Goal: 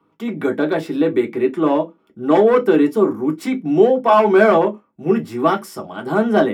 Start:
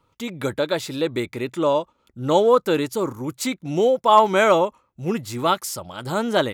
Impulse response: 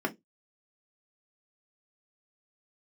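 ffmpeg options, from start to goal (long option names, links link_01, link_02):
-filter_complex "[0:a]acrossover=split=300|7800[link_01][link_02][link_03];[link_01]alimiter=level_in=2.5dB:limit=-24dB:level=0:latency=1,volume=-2.5dB[link_04];[link_02]asoftclip=type=hard:threshold=-13.5dB[link_05];[link_04][link_05][link_03]amix=inputs=3:normalize=0[link_06];[1:a]atrim=start_sample=2205[link_07];[link_06][link_07]afir=irnorm=-1:irlink=0,volume=-4dB"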